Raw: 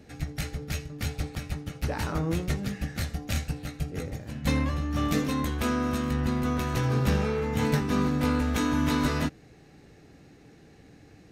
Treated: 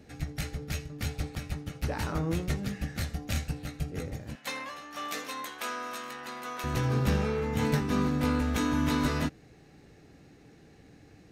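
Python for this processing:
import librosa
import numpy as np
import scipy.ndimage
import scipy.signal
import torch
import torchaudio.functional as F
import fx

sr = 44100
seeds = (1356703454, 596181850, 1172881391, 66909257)

y = fx.highpass(x, sr, hz=710.0, slope=12, at=(4.35, 6.64))
y = F.gain(torch.from_numpy(y), -2.0).numpy()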